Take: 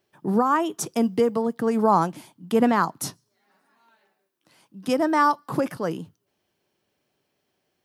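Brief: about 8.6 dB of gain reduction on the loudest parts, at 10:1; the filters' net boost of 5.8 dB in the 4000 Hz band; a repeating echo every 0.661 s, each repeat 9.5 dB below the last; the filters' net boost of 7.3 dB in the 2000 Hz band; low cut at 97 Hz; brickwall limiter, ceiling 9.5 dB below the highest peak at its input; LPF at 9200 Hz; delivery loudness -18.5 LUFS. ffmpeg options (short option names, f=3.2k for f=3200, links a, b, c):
-af "highpass=97,lowpass=9.2k,equalizer=f=2k:t=o:g=9,equalizer=f=4k:t=o:g=5,acompressor=threshold=-20dB:ratio=10,alimiter=limit=-20dB:level=0:latency=1,aecho=1:1:661|1322|1983|2644:0.335|0.111|0.0365|0.012,volume=12dB"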